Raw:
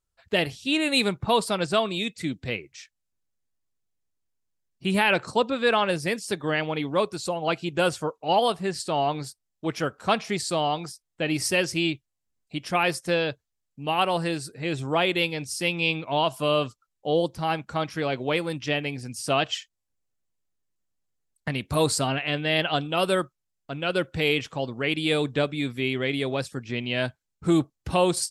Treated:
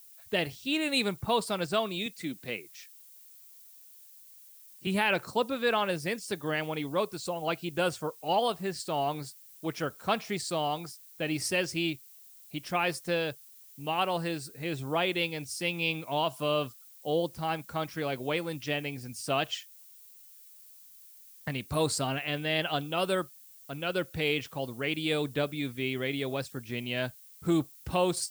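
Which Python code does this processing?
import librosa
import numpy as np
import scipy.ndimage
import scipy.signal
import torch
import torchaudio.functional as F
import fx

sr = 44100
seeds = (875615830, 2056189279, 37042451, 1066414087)

y = fx.highpass(x, sr, hz=180.0, slope=12, at=(2.06, 4.87))
y = fx.dmg_noise_colour(y, sr, seeds[0], colour='violet', level_db=-48.0)
y = y * librosa.db_to_amplitude(-5.5)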